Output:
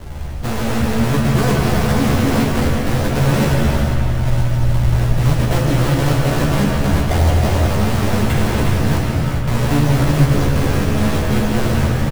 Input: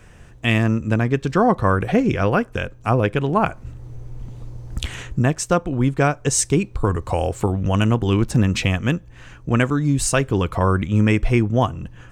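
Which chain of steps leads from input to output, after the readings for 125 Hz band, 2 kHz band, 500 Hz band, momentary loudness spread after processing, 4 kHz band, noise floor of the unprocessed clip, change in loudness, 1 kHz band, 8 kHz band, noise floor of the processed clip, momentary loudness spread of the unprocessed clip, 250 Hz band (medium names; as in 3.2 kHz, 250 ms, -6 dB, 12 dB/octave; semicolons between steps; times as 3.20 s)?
+6.0 dB, +2.0 dB, +1.0 dB, 4 LU, +5.0 dB, -44 dBFS, +3.0 dB, +1.0 dB, -2.5 dB, -19 dBFS, 14 LU, +3.0 dB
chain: bass shelf 240 Hz +9.5 dB; in parallel at +0.5 dB: compressor with a negative ratio -18 dBFS; on the sum: decimation with a swept rate 36×, swing 160% 1.9 Hz; saturation -17 dBFS, distortion -6 dB; doubling 14 ms -2 dB; feedback echo behind a low-pass 183 ms, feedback 71%, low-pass 3.3 kHz, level -7.5 dB; gated-style reverb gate 450 ms flat, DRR -1 dB; trim -2 dB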